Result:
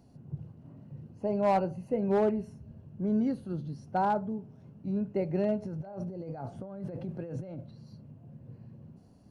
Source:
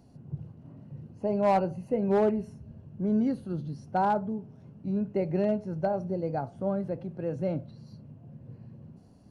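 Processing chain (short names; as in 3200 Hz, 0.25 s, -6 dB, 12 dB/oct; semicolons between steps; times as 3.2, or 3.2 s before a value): 5.62–7.59 negative-ratio compressor -37 dBFS, ratio -1; gain -2 dB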